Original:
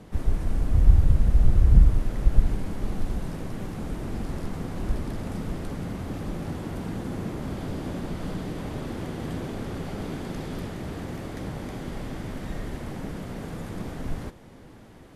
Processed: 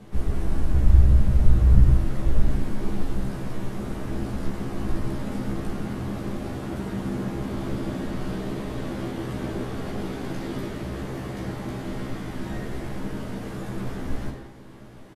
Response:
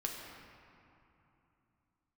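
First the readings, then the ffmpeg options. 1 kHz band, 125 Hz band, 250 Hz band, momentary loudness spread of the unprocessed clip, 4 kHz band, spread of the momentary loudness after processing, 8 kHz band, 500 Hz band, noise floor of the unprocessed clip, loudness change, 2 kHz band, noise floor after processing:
+2.5 dB, +2.0 dB, +3.0 dB, 14 LU, +2.0 dB, 14 LU, n/a, +3.0 dB, -47 dBFS, +1.5 dB, +2.5 dB, -42 dBFS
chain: -filter_complex "[0:a]asplit=2[a][b];[b]adelay=15,volume=-3dB[c];[a][c]amix=inputs=2:normalize=0[d];[1:a]atrim=start_sample=2205,afade=t=out:st=0.26:d=0.01,atrim=end_sample=11907[e];[d][e]afir=irnorm=-1:irlink=0"

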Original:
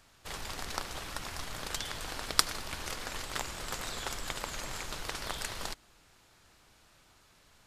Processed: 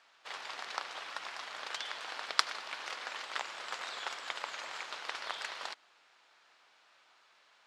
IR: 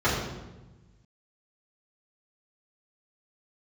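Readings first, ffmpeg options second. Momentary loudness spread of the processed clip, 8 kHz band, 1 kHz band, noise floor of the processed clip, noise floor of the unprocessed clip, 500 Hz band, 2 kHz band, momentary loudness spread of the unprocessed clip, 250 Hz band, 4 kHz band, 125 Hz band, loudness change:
10 LU, -10.0 dB, 0.0 dB, -66 dBFS, -63 dBFS, -5.0 dB, +0.5 dB, 11 LU, -15.5 dB, -2.0 dB, under -25 dB, -2.5 dB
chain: -af "highpass=710,lowpass=4k,volume=1dB"

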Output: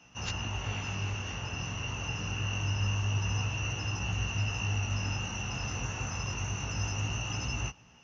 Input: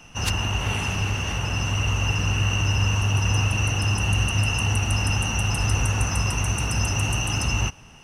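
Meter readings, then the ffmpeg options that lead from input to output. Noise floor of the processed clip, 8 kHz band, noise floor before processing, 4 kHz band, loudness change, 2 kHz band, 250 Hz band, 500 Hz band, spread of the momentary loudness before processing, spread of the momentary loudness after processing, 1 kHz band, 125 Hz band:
-57 dBFS, -10.5 dB, -46 dBFS, -10.0 dB, -10.5 dB, -10.0 dB, -10.0 dB, -10.0 dB, 3 LU, 5 LU, -10.0 dB, -10.0 dB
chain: -af "highpass=61,flanger=delay=16.5:depth=7.3:speed=0.26,volume=-7dB" -ar 22050 -c:a mp2 -b:a 96k

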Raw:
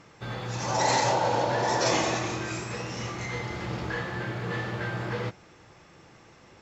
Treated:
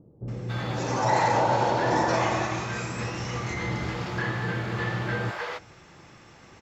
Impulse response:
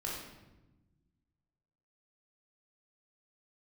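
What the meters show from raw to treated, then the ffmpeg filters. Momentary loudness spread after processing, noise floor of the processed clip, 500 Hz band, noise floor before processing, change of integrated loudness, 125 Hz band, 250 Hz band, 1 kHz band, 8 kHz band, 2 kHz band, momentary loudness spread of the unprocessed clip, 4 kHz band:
10 LU, -52 dBFS, +1.0 dB, -54 dBFS, +1.5 dB, +3.5 dB, +2.5 dB, +2.5 dB, n/a, +2.0 dB, 10 LU, -3.0 dB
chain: -filter_complex "[0:a]acrossover=split=2200[a][b];[b]acompressor=threshold=-43dB:ratio=6[c];[a][c]amix=inputs=2:normalize=0,acrossover=split=500[d][e];[e]adelay=280[f];[d][f]amix=inputs=2:normalize=0,volume=3.5dB"

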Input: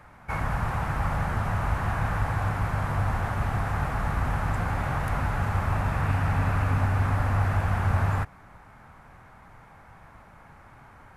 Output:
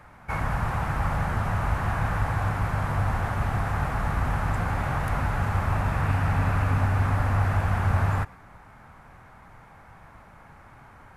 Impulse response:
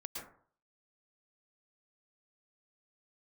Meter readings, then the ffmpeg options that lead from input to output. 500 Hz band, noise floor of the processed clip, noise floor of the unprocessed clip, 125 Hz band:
+1.0 dB, -50 dBFS, -51 dBFS, +1.0 dB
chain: -filter_complex "[0:a]asplit=2[a][b];[1:a]atrim=start_sample=2205,afade=t=out:st=0.17:d=0.01,atrim=end_sample=7938[c];[b][c]afir=irnorm=-1:irlink=0,volume=-13.5dB[d];[a][d]amix=inputs=2:normalize=0"

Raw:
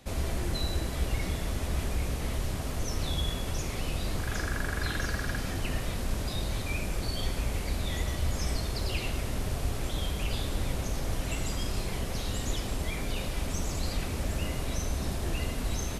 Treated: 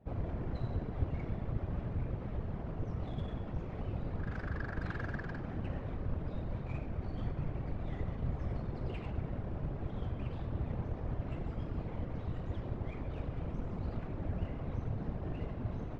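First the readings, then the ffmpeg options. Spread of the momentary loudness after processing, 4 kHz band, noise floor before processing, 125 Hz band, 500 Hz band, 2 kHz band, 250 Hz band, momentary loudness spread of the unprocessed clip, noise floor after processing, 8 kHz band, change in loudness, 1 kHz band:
2 LU, -24.5 dB, -35 dBFS, -4.0 dB, -6.5 dB, -12.0 dB, -4.0 dB, 2 LU, -43 dBFS, under -35 dB, -6.5 dB, -8.0 dB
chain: -af "adynamicsmooth=sensitivity=2.5:basefreq=960,afftfilt=real='hypot(re,im)*cos(2*PI*random(0))':imag='hypot(re,im)*sin(2*PI*random(1))':win_size=512:overlap=0.75,aemphasis=mode=reproduction:type=50fm"

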